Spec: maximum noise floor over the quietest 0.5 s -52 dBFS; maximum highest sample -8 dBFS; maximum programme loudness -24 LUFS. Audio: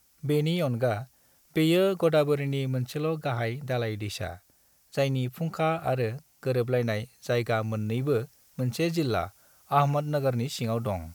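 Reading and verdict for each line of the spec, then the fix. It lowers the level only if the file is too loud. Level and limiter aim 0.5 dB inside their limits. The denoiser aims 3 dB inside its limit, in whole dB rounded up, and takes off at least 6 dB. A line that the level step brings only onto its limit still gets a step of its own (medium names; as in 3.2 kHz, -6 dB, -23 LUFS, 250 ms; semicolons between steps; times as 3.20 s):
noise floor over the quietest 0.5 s -64 dBFS: pass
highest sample -10.0 dBFS: pass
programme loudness -28.0 LUFS: pass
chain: none needed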